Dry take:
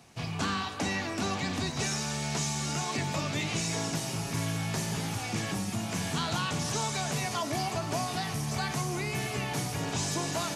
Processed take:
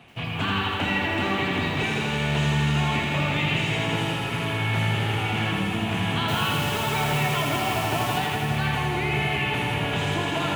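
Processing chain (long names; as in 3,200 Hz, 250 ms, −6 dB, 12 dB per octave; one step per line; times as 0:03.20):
high shelf with overshoot 4,000 Hz −10.5 dB, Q 3
in parallel at −2.5 dB: brickwall limiter −28 dBFS, peak gain reduction 9.5 dB
0:06.28–0:08.18: on the sum: bit-depth reduction 6 bits, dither none
delay that swaps between a low-pass and a high-pass 166 ms, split 2,000 Hz, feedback 52%, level −5 dB
feedback echo at a low word length 82 ms, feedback 80%, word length 9 bits, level −5 dB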